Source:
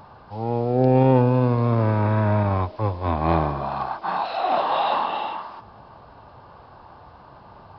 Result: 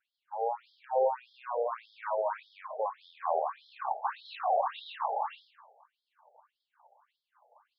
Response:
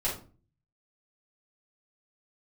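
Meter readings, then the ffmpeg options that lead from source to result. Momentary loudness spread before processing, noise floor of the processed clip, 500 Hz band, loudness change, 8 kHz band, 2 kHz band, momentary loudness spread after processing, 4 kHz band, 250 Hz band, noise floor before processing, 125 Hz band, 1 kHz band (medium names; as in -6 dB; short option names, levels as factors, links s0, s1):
11 LU, under -85 dBFS, -9.5 dB, -12.0 dB, no reading, -12.0 dB, 11 LU, -12.5 dB, under -40 dB, -47 dBFS, under -40 dB, -8.5 dB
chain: -filter_complex "[0:a]acrossover=split=440[s0][s1];[s1]acompressor=threshold=0.0447:ratio=4[s2];[s0][s2]amix=inputs=2:normalize=0,aemphasis=mode=reproduction:type=bsi,agate=range=0.0224:threshold=0.0316:ratio=3:detection=peak,asplit=2[s3][s4];[1:a]atrim=start_sample=2205,asetrate=74970,aresample=44100,adelay=109[s5];[s4][s5]afir=irnorm=-1:irlink=0,volume=0.133[s6];[s3][s6]amix=inputs=2:normalize=0,afftfilt=real='re*between(b*sr/1024,590*pow(4500/590,0.5+0.5*sin(2*PI*1.7*pts/sr))/1.41,590*pow(4500/590,0.5+0.5*sin(2*PI*1.7*pts/sr))*1.41)':imag='im*between(b*sr/1024,590*pow(4500/590,0.5+0.5*sin(2*PI*1.7*pts/sr))/1.41,590*pow(4500/590,0.5+0.5*sin(2*PI*1.7*pts/sr))*1.41)':win_size=1024:overlap=0.75"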